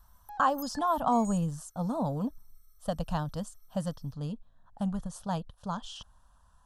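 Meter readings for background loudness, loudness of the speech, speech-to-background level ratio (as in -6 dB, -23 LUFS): -46.0 LUFS, -32.5 LUFS, 13.5 dB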